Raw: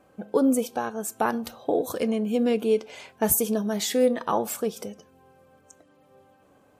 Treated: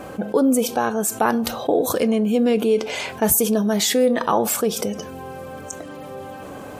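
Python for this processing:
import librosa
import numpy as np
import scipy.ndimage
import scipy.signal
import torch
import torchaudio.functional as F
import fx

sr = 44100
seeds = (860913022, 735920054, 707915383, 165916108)

y = fx.env_flatten(x, sr, amount_pct=50)
y = y * 10.0 ** (2.5 / 20.0)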